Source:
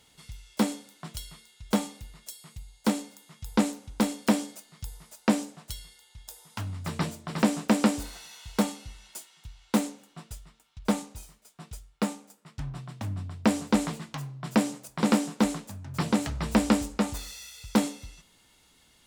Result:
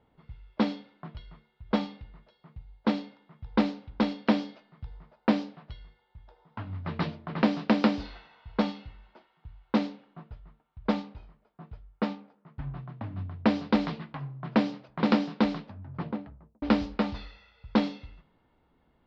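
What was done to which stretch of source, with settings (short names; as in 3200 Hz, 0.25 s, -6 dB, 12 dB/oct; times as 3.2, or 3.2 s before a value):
15.5–16.62 studio fade out
whole clip: low-pass opened by the level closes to 980 Hz, open at -20.5 dBFS; steep low-pass 4900 Hz 48 dB/oct; notches 50/100/150/200 Hz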